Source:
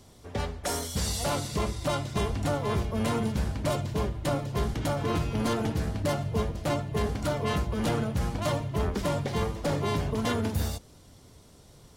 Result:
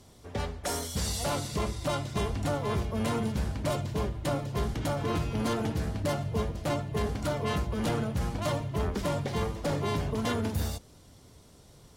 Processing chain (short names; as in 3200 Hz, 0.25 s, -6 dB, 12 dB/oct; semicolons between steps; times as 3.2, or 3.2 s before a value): added harmonics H 5 -34 dB, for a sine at -16.5 dBFS; gain -2 dB